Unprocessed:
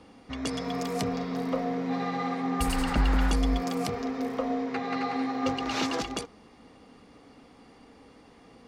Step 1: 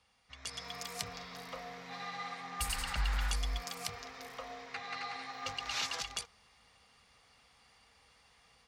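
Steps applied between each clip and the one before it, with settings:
high-pass filter 44 Hz
guitar amp tone stack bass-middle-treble 10-0-10
automatic gain control gain up to 8 dB
level −8 dB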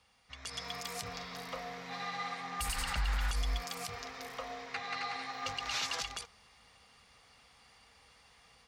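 brickwall limiter −27.5 dBFS, peak gain reduction 9 dB
level +3 dB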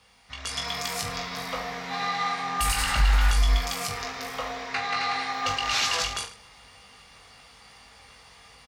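reverse bouncing-ball delay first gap 20 ms, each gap 1.2×, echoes 5
level +8.5 dB

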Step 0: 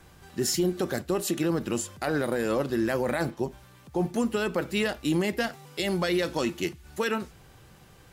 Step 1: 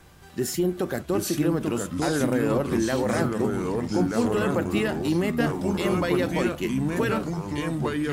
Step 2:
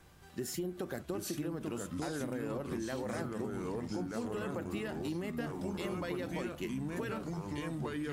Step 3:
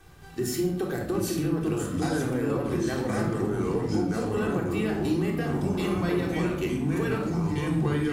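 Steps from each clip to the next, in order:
dynamic equaliser 5,100 Hz, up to −8 dB, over −49 dBFS, Q 0.89; delay with pitch and tempo change per echo 688 ms, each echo −3 semitones, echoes 3; level +1.5 dB
downward compressor, threshold −26 dBFS, peak gain reduction 8.5 dB; level −8 dB
in parallel at −7.5 dB: dead-zone distortion −56.5 dBFS; on the sum: rectangular room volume 2,000 cubic metres, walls furnished, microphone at 3.6 metres; level +2.5 dB

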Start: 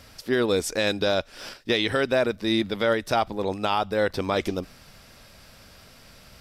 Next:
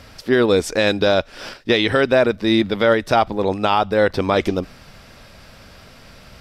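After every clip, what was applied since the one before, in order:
high-shelf EQ 5,700 Hz −10 dB
level +7.5 dB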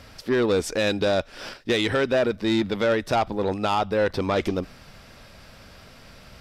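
soft clipping −11.5 dBFS, distortion −15 dB
level −3.5 dB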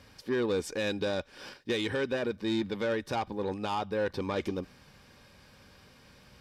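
notch comb filter 670 Hz
level −7.5 dB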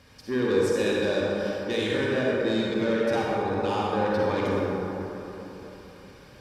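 convolution reverb RT60 3.5 s, pre-delay 38 ms, DRR −5 dB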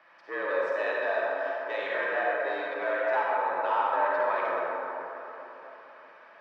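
frequency shifter +76 Hz
flat-topped band-pass 1,200 Hz, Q 0.91
level +3.5 dB

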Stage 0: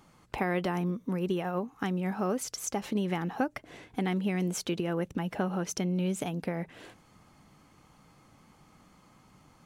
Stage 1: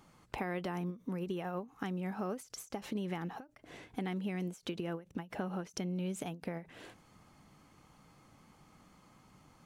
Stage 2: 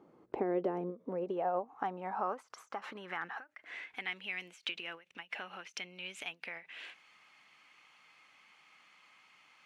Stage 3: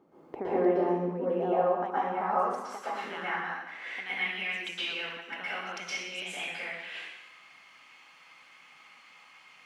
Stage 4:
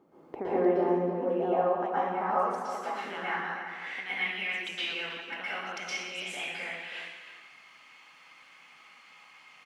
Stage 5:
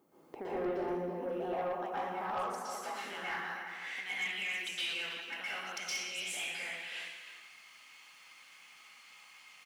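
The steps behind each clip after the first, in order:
downward compressor 2 to 1, threshold −35 dBFS, peak gain reduction 6.5 dB; every ending faded ahead of time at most 220 dB per second; level −2.5 dB
low-shelf EQ 270 Hz −5 dB; band-pass filter sweep 380 Hz → 2,500 Hz, 0:00.36–0:04.19; level +12 dB
dense smooth reverb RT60 1 s, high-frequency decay 0.95×, pre-delay 105 ms, DRR −10 dB; level −2.5 dB
slap from a distant wall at 55 metres, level −9 dB
first-order pre-emphasis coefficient 0.8; soft clipping −36.5 dBFS, distortion −15 dB; level +7 dB

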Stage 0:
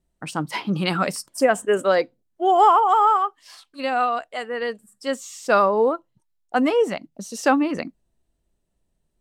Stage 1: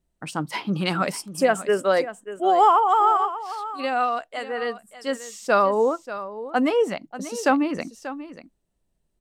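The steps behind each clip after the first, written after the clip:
single-tap delay 587 ms −13.5 dB
level −1.5 dB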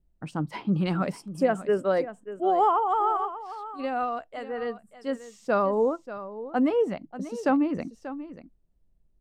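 spectral tilt −3 dB per octave
level −6.5 dB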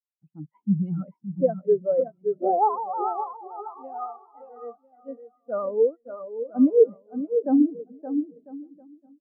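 bouncing-ball delay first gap 570 ms, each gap 0.75×, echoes 5
every bin expanded away from the loudest bin 2.5 to 1
level +4 dB

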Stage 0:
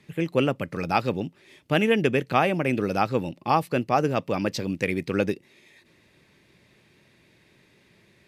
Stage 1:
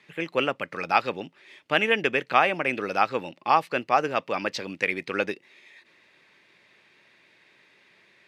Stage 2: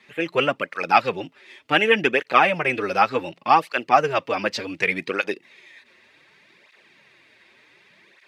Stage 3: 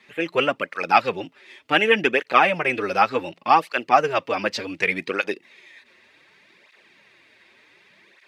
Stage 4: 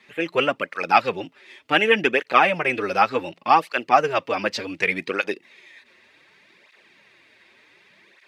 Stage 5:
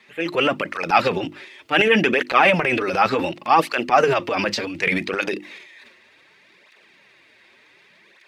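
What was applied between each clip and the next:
resonant band-pass 1,800 Hz, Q 0.6; level +4.5 dB
through-zero flanger with one copy inverted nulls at 0.67 Hz, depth 7.1 ms; level +7 dB
parametric band 140 Hz −5 dB 0.3 octaves
no processing that can be heard
mains-hum notches 50/100/150/200/250/300/350 Hz; transient designer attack −2 dB, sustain +10 dB; level +1 dB

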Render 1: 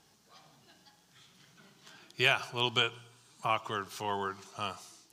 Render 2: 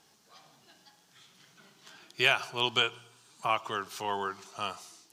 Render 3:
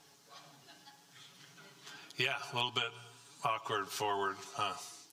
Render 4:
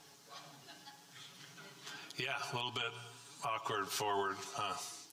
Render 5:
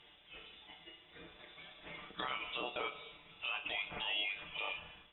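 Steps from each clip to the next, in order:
low-shelf EQ 150 Hz −10 dB; level +2 dB
comb filter 7.1 ms, depth 72%; downward compressor 12 to 1, threshold −30 dBFS, peak gain reduction 14.5 dB
brickwall limiter −29.5 dBFS, peak gain reduction 11.5 dB; level +2.5 dB
voice inversion scrambler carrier 3,700 Hz; treble cut that deepens with the level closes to 2,900 Hz, closed at −38.5 dBFS; flutter between parallel walls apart 5.2 metres, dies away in 0.21 s

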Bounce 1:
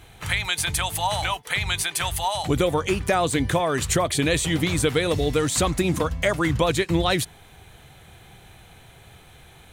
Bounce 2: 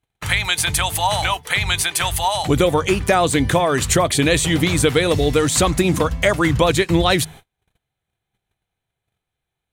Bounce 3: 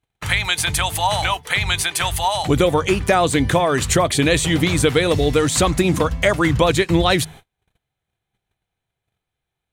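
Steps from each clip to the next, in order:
hum removal 78.44 Hz, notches 3; noise gate −42 dBFS, range −38 dB; level +5.5 dB
high-shelf EQ 8,700 Hz −4 dB

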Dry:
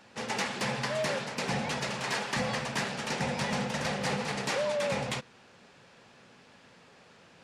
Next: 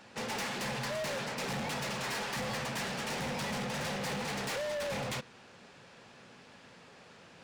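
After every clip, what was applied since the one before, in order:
hard clipping −35.5 dBFS, distortion −6 dB
level +1.5 dB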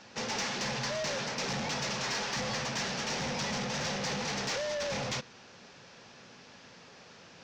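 high shelf with overshoot 8,000 Hz −12 dB, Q 3
level +1 dB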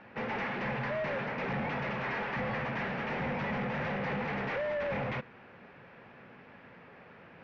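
Chebyshev low-pass filter 2,200 Hz, order 3
level +2 dB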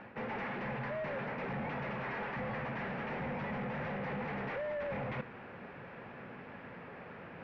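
high-shelf EQ 3,500 Hz −9 dB
reversed playback
downward compressor 6 to 1, threshold −43 dBFS, peak gain reduction 10 dB
reversed playback
level +5.5 dB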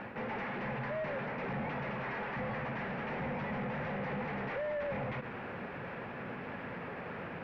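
brickwall limiter −40 dBFS, peak gain reduction 11.5 dB
level +7 dB

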